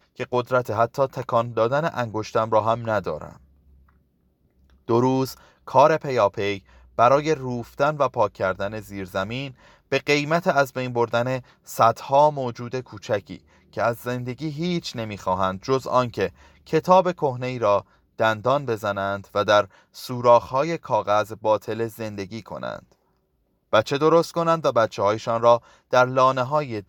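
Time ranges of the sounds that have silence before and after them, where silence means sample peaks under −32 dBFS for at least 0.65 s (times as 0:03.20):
0:04.89–0:22.79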